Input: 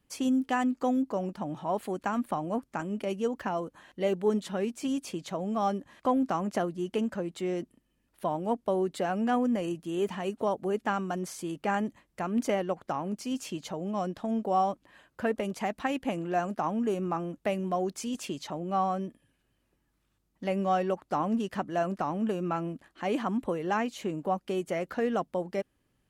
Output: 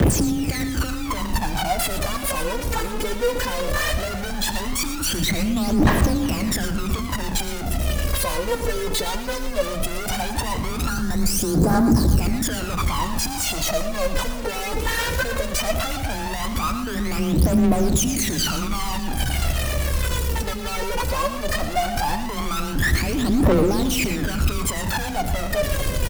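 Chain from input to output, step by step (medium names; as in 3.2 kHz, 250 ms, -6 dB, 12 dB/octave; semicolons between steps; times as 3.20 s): one-bit comparator; spectral selection erased 10.89–12.22 s, 1.8–3.9 kHz; bass shelf 220 Hz +10.5 dB; harmonic-percussive split harmonic -8 dB; saturation -35 dBFS, distortion -9 dB; phaser 0.17 Hz, delay 2.4 ms, feedback 79%; frequency shift +18 Hz; wow and flutter 19 cents; multi-tap echo 116/364/602 ms -12.5/-19/-20 dB; on a send at -12.5 dB: reverberation RT60 0.50 s, pre-delay 85 ms; on the sum: trim +9 dB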